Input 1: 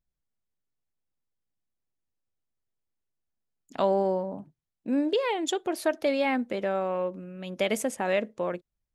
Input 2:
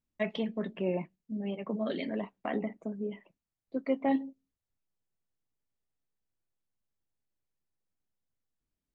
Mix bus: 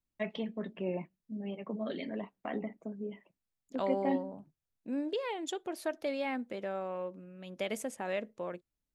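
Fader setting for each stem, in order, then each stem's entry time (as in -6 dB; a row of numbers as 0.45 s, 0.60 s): -9.0 dB, -4.0 dB; 0.00 s, 0.00 s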